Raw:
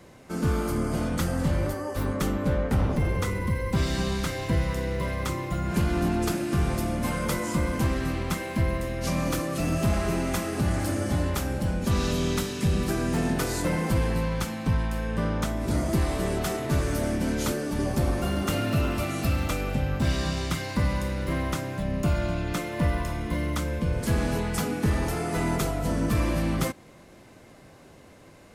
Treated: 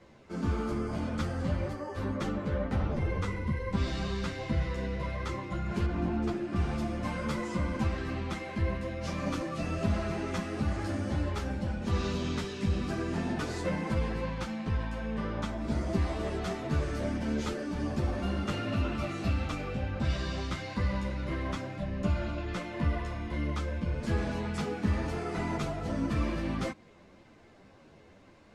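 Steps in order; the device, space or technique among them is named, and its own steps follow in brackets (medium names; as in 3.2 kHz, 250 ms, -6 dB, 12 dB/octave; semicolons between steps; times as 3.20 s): string-machine ensemble chorus (three-phase chorus; low-pass 5.1 kHz 12 dB/octave); 5.86–6.56 s: treble shelf 2.6 kHz -9.5 dB; trim -2.5 dB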